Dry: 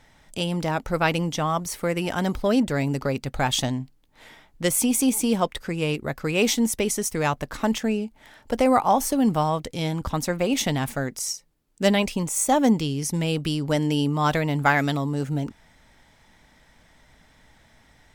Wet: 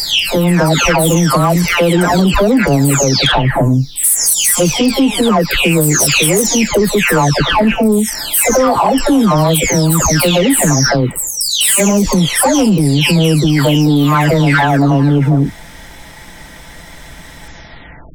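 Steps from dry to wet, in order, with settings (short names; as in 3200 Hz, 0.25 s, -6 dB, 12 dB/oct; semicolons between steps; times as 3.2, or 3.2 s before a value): spectral delay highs early, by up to 0.666 s; high shelf 8300 Hz +6.5 dB; compressor 6:1, threshold -24 dBFS, peak gain reduction 9 dB; soft clip -22 dBFS, distortion -18 dB; maximiser +27 dB; gain -4 dB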